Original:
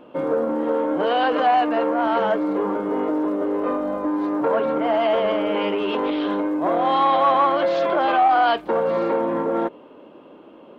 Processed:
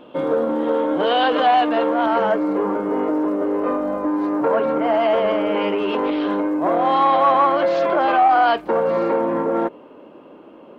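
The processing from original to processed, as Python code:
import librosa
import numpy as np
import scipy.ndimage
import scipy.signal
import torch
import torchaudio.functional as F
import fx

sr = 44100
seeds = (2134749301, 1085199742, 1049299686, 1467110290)

y = fx.peak_eq(x, sr, hz=3500.0, db=fx.steps((0.0, 9.0), (2.06, -5.0)), octaves=0.41)
y = y * 10.0 ** (2.0 / 20.0)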